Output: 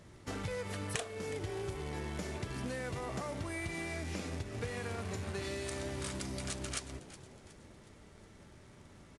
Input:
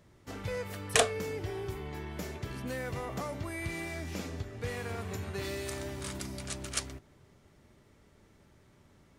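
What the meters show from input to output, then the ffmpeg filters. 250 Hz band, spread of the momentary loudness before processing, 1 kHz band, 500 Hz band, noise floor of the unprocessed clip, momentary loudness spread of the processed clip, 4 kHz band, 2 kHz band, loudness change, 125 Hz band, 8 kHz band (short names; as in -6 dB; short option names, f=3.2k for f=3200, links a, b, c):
-1.0 dB, 10 LU, -4.5 dB, -4.0 dB, -63 dBFS, 19 LU, -5.5 dB, -4.0 dB, -3.5 dB, -1.5 dB, -6.0 dB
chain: -filter_complex "[0:a]bandreject=f=137.2:t=h:w=4,bandreject=f=274.4:t=h:w=4,bandreject=f=411.6:t=h:w=4,bandreject=f=548.8:t=h:w=4,bandreject=f=686:t=h:w=4,bandreject=f=823.2:t=h:w=4,bandreject=f=960.4:t=h:w=4,bandreject=f=1.0976k:t=h:w=4,acompressor=threshold=-41dB:ratio=8,acrusher=bits=3:mode=log:mix=0:aa=0.000001,asplit=2[a][b];[b]asplit=4[c][d][e][f];[c]adelay=367,afreqshift=120,volume=-16dB[g];[d]adelay=734,afreqshift=240,volume=-23.3dB[h];[e]adelay=1101,afreqshift=360,volume=-30.7dB[i];[f]adelay=1468,afreqshift=480,volume=-38dB[j];[g][h][i][j]amix=inputs=4:normalize=0[k];[a][k]amix=inputs=2:normalize=0,volume=5dB" -ar 24000 -c:a aac -b:a 96k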